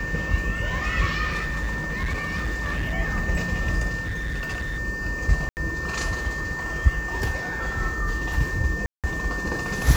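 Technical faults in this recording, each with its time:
whistle 1,800 Hz −29 dBFS
0:01.30–0:02.94: clipping −22.5 dBFS
0:04.02–0:04.79: clipping −25 dBFS
0:05.49–0:05.57: drop-out 79 ms
0:08.86–0:09.04: drop-out 177 ms

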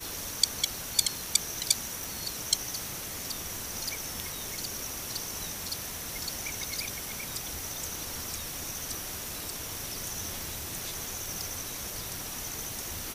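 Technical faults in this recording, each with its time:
0:02.04: click

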